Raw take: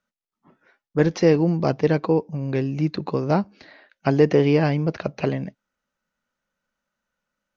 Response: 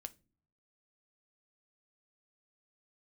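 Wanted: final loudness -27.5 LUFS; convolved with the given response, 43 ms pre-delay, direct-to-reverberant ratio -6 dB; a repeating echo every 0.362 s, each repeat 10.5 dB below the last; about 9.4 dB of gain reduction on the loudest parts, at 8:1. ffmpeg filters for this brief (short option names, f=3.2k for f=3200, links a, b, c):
-filter_complex "[0:a]acompressor=threshold=-21dB:ratio=8,aecho=1:1:362|724|1086:0.299|0.0896|0.0269,asplit=2[a][b];[1:a]atrim=start_sample=2205,adelay=43[c];[b][c]afir=irnorm=-1:irlink=0,volume=11dB[d];[a][d]amix=inputs=2:normalize=0,volume=-7dB"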